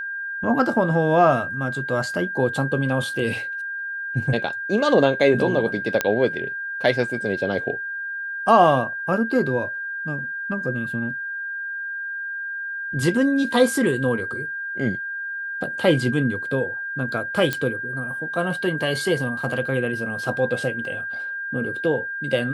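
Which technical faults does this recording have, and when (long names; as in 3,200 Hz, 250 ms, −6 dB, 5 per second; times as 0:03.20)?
whistle 1,600 Hz −27 dBFS
0:06.01: click −5 dBFS
0:17.53: click −9 dBFS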